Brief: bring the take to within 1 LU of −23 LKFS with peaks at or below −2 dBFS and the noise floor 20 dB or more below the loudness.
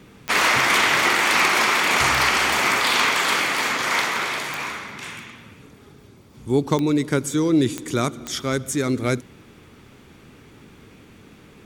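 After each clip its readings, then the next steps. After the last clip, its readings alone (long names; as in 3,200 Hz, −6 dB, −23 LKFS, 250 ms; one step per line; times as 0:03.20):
number of clicks 6; integrated loudness −19.5 LKFS; sample peak −5.0 dBFS; target loudness −23.0 LKFS
→ click removal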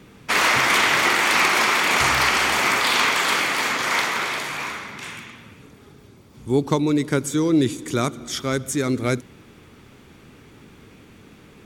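number of clicks 0; integrated loudness −19.5 LKFS; sample peak −5.0 dBFS; target loudness −23.0 LKFS
→ level −3.5 dB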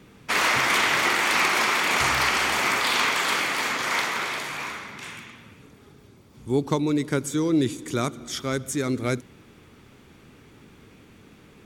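integrated loudness −23.0 LKFS; sample peak −8.5 dBFS; background noise floor −52 dBFS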